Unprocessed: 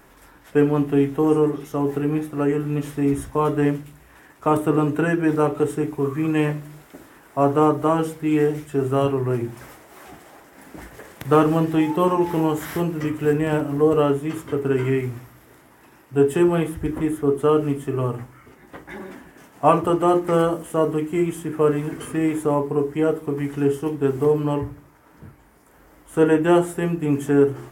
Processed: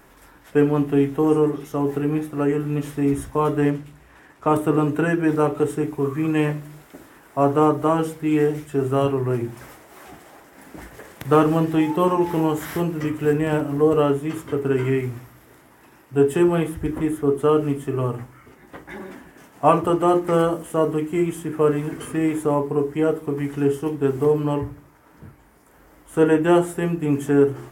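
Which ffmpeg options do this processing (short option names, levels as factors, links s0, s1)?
-filter_complex "[0:a]asettb=1/sr,asplit=3[s0][s1][s2];[s0]atrim=end=3.704[s3];[s1]atrim=start=3.7:end=4.5,asetpts=PTS-STARTPTS,afade=t=in:d=0.004:c=qsin,afade=t=out:st=0.796:d=0.004:c=qsin,highshelf=f=9800:g=-11[s4];[s2]atrim=start=4.496[s5];[s3][s4]acrossfade=d=0.004:c1=hsin:c2=qsin[s6];[s6][s5]acrossfade=d=0.004:c1=qsin:c2=hsin"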